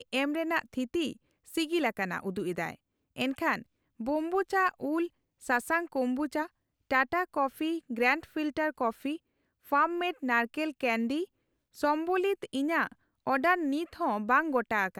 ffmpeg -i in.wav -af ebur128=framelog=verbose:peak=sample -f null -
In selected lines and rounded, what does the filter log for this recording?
Integrated loudness:
  I:         -30.4 LUFS
  Threshold: -40.7 LUFS
Loudness range:
  LRA:         2.7 LU
  Threshold: -50.9 LUFS
  LRA low:   -32.6 LUFS
  LRA high:  -30.0 LUFS
Sample peak:
  Peak:      -12.6 dBFS